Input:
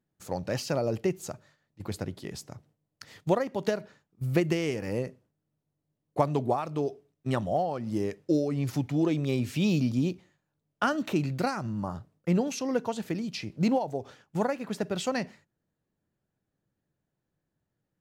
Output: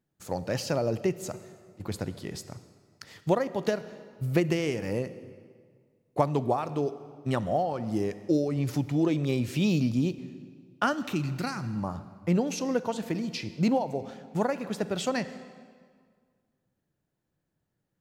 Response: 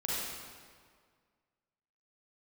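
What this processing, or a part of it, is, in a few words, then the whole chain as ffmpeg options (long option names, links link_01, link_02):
ducked reverb: -filter_complex "[0:a]asettb=1/sr,asplit=3[link_01][link_02][link_03];[link_01]atrim=end=10.934[link_04];[link_02]atrim=start=10.93:end=11.76,asetpts=PTS-STARTPTS,afade=type=in:duration=0.004:curve=qsin,afade=type=out:start_time=0.826:duration=0.004:curve=qsin,equalizer=frequency=570:width_type=o:width=1.4:gain=-11[link_05];[link_03]atrim=start=11.756[link_06];[link_04][link_05]acrossfade=duration=0.004:curve1=hsin:curve2=qsin[link_07];[link_07][link_06]acrossfade=duration=0.004:curve1=qsin:curve2=hsin,asplit=3[link_08][link_09][link_10];[1:a]atrim=start_sample=2205[link_11];[link_09][link_11]afir=irnorm=-1:irlink=0[link_12];[link_10]apad=whole_len=794049[link_13];[link_12][link_13]sidechaincompress=threshold=-28dB:ratio=8:attack=32:release=437,volume=-16dB[link_14];[link_08][link_14]amix=inputs=2:normalize=0"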